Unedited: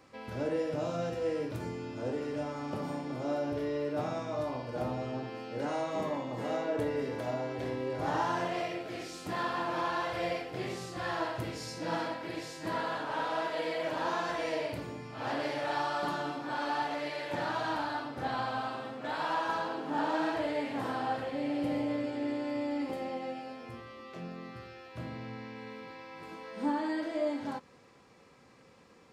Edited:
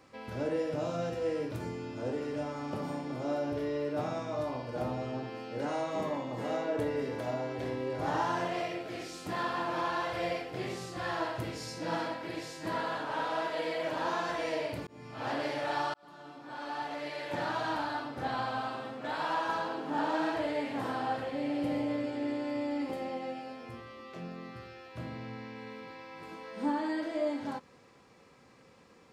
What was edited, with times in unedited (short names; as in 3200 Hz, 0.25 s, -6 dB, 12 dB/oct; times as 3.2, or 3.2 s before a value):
14.87–15.22 fade in equal-power
15.94–17.4 fade in